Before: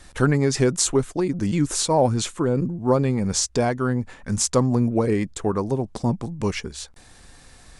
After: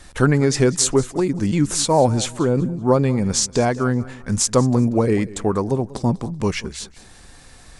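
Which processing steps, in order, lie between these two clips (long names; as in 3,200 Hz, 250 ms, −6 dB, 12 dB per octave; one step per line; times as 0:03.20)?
feedback echo with a swinging delay time 191 ms, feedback 32%, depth 71 cents, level −19 dB
level +3 dB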